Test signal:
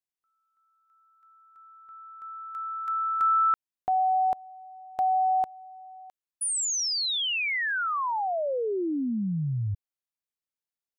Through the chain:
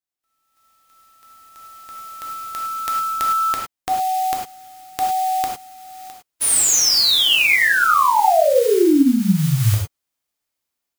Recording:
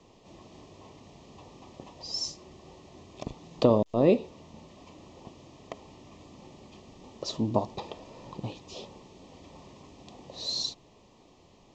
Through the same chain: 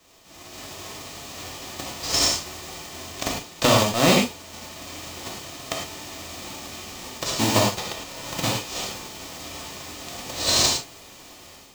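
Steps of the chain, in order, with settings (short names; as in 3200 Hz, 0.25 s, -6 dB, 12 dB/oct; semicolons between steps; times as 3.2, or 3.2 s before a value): spectral whitening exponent 0.3; AGC gain up to 11 dB; non-linear reverb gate 0.13 s flat, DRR -1 dB; gain -1.5 dB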